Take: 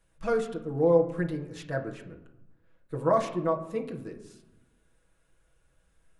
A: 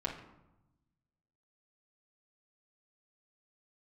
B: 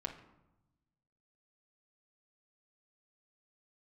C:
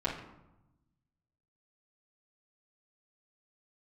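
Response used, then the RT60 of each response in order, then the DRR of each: B; 0.95 s, 0.95 s, 0.95 s; -5.5 dB, -1.0 dB, -9.5 dB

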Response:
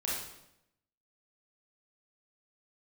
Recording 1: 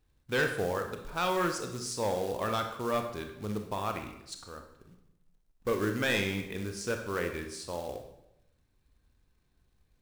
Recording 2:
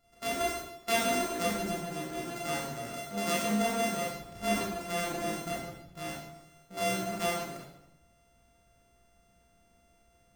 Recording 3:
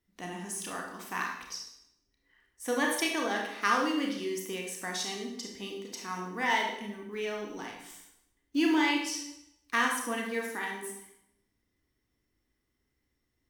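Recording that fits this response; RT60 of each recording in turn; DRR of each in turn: 2; 0.80 s, 0.80 s, 0.80 s; 4.5 dB, -6.0 dB, 0.0 dB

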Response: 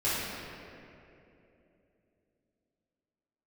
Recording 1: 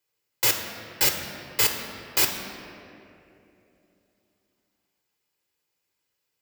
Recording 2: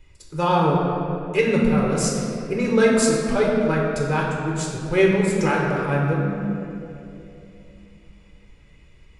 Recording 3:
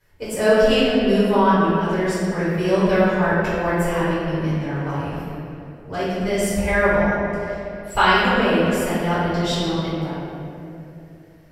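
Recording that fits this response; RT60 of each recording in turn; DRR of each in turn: 3; 2.9 s, 2.9 s, 2.9 s; 4.0 dB, -3.0 dB, -11.5 dB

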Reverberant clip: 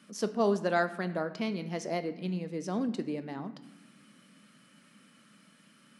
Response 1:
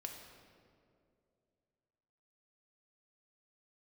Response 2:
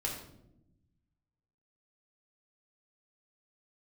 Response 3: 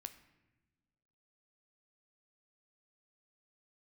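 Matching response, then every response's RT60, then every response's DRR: 3; 2.4 s, 0.85 s, no single decay rate; 1.5 dB, -3.0 dB, 9.5 dB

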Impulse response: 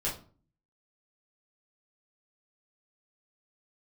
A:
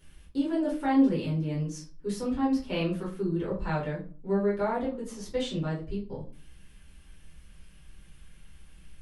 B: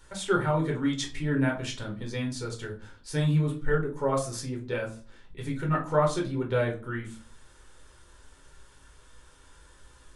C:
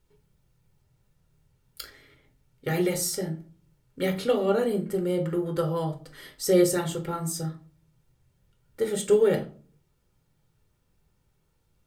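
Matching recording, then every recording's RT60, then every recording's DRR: A; 0.40 s, 0.40 s, 0.40 s; -6.5 dB, -0.5 dB, 4.5 dB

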